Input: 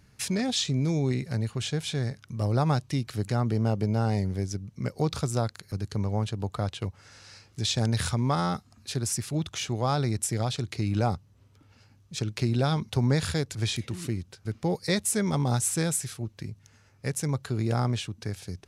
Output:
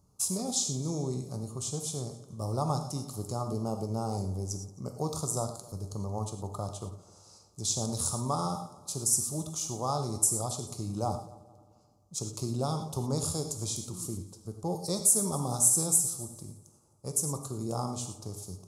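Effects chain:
drawn EQ curve 250 Hz 0 dB, 1,200 Hz +6 dB, 1,700 Hz −26 dB, 6,900 Hz +13 dB
echo machine with several playback heads 88 ms, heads second and third, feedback 45%, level −21 dB
reverb whose tail is shaped and stops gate 140 ms flat, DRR 5.5 dB
one half of a high-frequency compander decoder only
level −8 dB

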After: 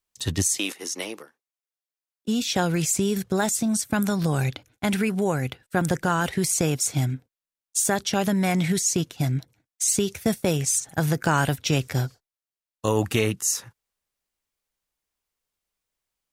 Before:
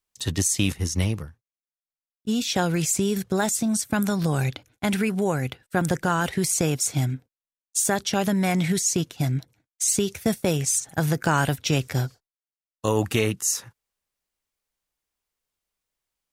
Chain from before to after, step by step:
0:00.58–0:02.28: high-pass filter 320 Hz 24 dB per octave

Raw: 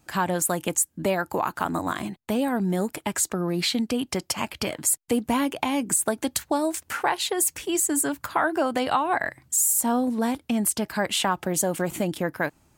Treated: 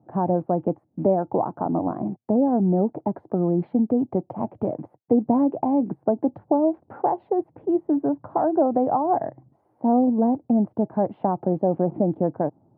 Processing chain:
loose part that buzzes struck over −38 dBFS, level −33 dBFS
elliptic band-pass filter 110–770 Hz, stop band 80 dB
level +5.5 dB

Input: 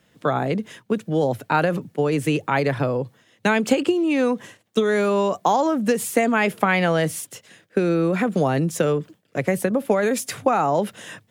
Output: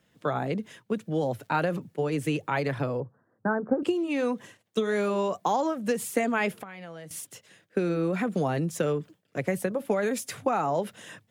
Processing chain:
0:01.23–0:01.72: surface crackle 250 per second −45 dBFS
0:03.00–0:03.83: Butterworth low-pass 1,600 Hz 72 dB per octave
0:06.52–0:07.11: downward compressor 6 to 1, threshold −34 dBFS, peak gain reduction 18.5 dB
flanger 1.8 Hz, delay 0.1 ms, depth 2.2 ms, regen −72%
level −2.5 dB

